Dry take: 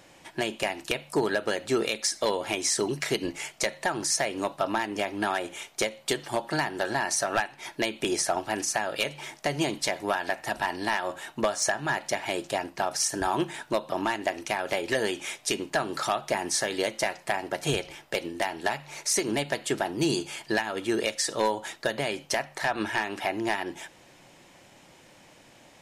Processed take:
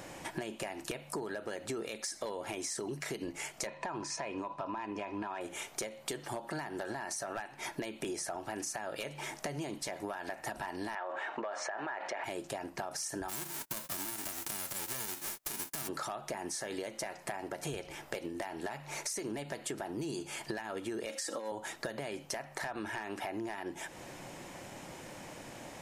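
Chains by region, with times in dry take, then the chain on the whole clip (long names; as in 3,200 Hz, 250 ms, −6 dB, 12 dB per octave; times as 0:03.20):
0:03.67–0:05.41: high-frequency loss of the air 110 metres + hollow resonant body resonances 1,000/2,500 Hz, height 15 dB
0:10.95–0:12.24: flat-topped band-pass 1,100 Hz, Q 0.52 + envelope flattener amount 50%
0:13.28–0:15.87: spectral envelope flattened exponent 0.1 + noise gate −45 dBFS, range −25 dB
0:21.09–0:21.52: high-pass filter 180 Hz + comb filter 3.7 ms + compressor whose output falls as the input rises −27 dBFS, ratio −0.5
whole clip: parametric band 3,500 Hz −6 dB 1.5 octaves; brickwall limiter −22.5 dBFS; downward compressor 6 to 1, threshold −45 dBFS; level +8 dB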